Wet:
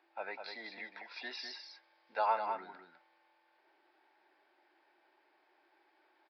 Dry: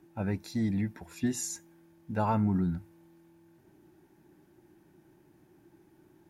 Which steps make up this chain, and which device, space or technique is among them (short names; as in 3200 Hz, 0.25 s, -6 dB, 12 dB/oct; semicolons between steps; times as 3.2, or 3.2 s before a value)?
0.91–2.26 resonant high shelf 6500 Hz -10.5 dB, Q 3; musical greeting card (downsampling 11025 Hz; HPF 570 Hz 24 dB/oct; bell 2200 Hz +4.5 dB 0.3 oct); echo 0.202 s -6.5 dB